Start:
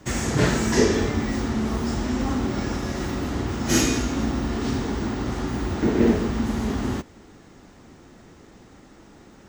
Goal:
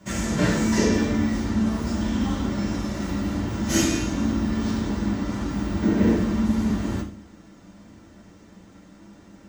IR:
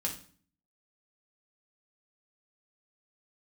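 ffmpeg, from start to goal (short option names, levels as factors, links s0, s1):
-filter_complex "[0:a]asettb=1/sr,asplit=3[s0][s1][s2];[s0]atrim=end=2.014[s3];[s1]atrim=start=2.01:end=2.45,asetpts=PTS-STARTPTS,afade=t=in:d=0.004:c=qsin,afade=t=out:st=0.436:d=0.004:c=qsin,equalizer=f=3300:w=6.2:g=9.5[s4];[s2]atrim=start=2.446[s5];[s3][s4]acrossfade=d=0.004:c1=hsin:c2=qsin[s6];[s6][s5]acrossfade=d=0.004:c1=qsin:c2=hsin[s7];[1:a]atrim=start_sample=2205,asetrate=48510,aresample=44100[s8];[s7][s8]afir=irnorm=-1:irlink=0,volume=0.631"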